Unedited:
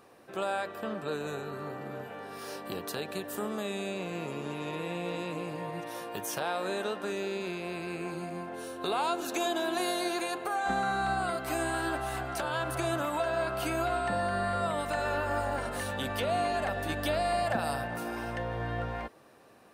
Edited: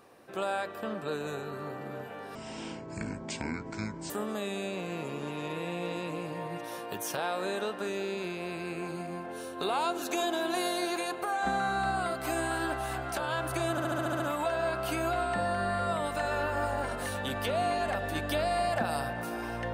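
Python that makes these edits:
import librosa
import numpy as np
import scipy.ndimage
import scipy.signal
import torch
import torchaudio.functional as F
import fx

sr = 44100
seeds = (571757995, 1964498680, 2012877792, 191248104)

y = fx.edit(x, sr, fx.speed_span(start_s=2.35, length_s=0.98, speed=0.56),
    fx.stutter(start_s=12.94, slice_s=0.07, count=8), tone=tone)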